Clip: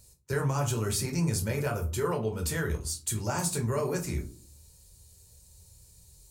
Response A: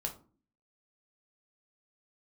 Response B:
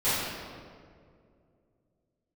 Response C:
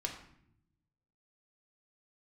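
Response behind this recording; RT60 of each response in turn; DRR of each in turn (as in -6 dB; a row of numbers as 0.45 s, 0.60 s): A; 0.40 s, 2.3 s, 0.70 s; 1.5 dB, -16.5 dB, 1.0 dB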